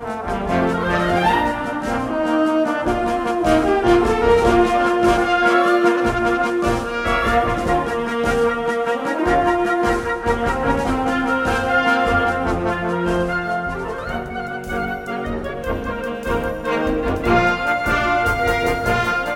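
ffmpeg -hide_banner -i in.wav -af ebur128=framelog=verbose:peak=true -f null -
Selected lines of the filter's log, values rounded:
Integrated loudness:
  I:         -18.7 LUFS
  Threshold: -28.7 LUFS
Loudness range:
  LRA:         7.4 LU
  Threshold: -38.7 LUFS
  LRA low:   -23.4 LUFS
  LRA high:  -16.0 LUFS
True peak:
  Peak:       -2.9 dBFS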